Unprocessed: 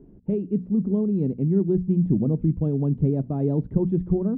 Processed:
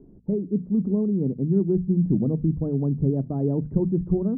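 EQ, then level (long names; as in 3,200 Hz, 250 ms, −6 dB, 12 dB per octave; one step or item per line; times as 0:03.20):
Bessel low-pass filter 1,100 Hz, order 8
mains-hum notches 50/100/150 Hz
0.0 dB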